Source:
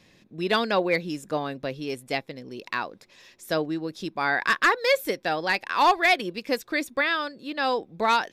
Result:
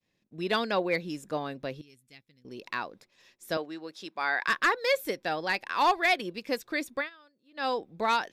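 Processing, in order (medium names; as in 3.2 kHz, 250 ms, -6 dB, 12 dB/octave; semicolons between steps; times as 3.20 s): 3.57–4.48 s: frequency weighting A; expander -47 dBFS; 1.81–2.45 s: amplifier tone stack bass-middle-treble 6-0-2; 6.97–7.65 s: dip -23.5 dB, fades 0.13 s; trim -4.5 dB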